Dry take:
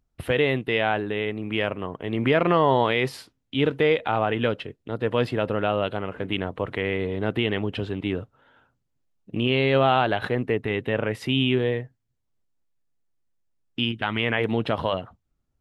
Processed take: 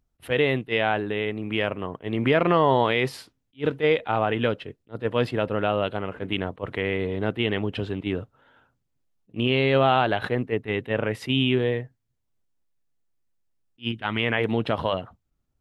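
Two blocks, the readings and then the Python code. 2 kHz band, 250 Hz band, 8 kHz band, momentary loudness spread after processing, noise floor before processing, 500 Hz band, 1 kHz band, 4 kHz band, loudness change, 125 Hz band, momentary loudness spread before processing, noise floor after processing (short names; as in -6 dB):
-0.5 dB, -0.5 dB, n/a, 11 LU, -75 dBFS, -0.5 dB, 0.0 dB, -0.5 dB, -0.5 dB, -0.5 dB, 10 LU, -75 dBFS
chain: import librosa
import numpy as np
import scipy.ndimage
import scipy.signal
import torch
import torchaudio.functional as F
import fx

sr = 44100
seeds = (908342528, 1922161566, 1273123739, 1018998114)

y = fx.attack_slew(x, sr, db_per_s=400.0)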